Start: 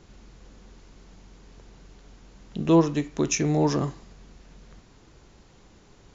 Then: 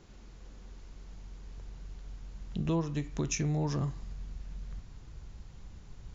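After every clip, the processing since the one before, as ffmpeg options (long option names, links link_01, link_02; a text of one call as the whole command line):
ffmpeg -i in.wav -af "asubboost=boost=5.5:cutoff=140,acompressor=threshold=-26dB:ratio=2.5,volume=-4dB" out.wav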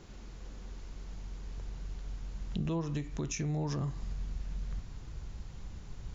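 ffmpeg -i in.wav -af "alimiter=level_in=5dB:limit=-24dB:level=0:latency=1:release=215,volume=-5dB,volume=4dB" out.wav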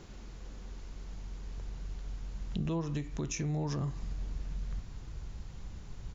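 ffmpeg -i in.wav -filter_complex "[0:a]areverse,acompressor=mode=upward:threshold=-43dB:ratio=2.5,areverse,asplit=2[link_01][link_02];[link_02]adelay=641.4,volume=-23dB,highshelf=frequency=4000:gain=-14.4[link_03];[link_01][link_03]amix=inputs=2:normalize=0" out.wav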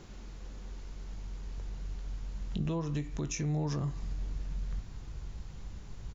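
ffmpeg -i in.wav -filter_complex "[0:a]asplit=2[link_01][link_02];[link_02]adelay=20,volume=-12.5dB[link_03];[link_01][link_03]amix=inputs=2:normalize=0" out.wav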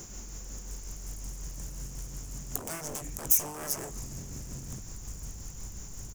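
ffmpeg -i in.wav -af "aeval=exprs='0.0133*(abs(mod(val(0)/0.0133+3,4)-2)-1)':channel_layout=same,tremolo=f=5.5:d=0.36,aexciter=amount=7.5:drive=9.1:freq=6000,volume=3.5dB" out.wav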